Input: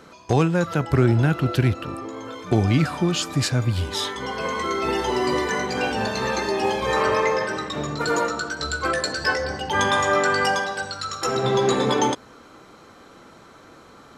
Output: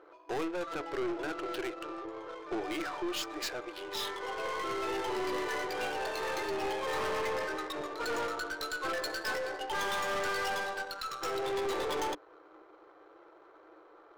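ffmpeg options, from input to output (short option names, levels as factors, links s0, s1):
-af "afftfilt=real='re*between(b*sr/4096,300,8300)':imag='im*between(b*sr/4096,300,8300)':win_size=4096:overlap=0.75,adynamicsmooth=sensitivity=6:basefreq=1100,aeval=exprs='(tanh(17.8*val(0)+0.3)-tanh(0.3))/17.8':c=same,volume=0.531"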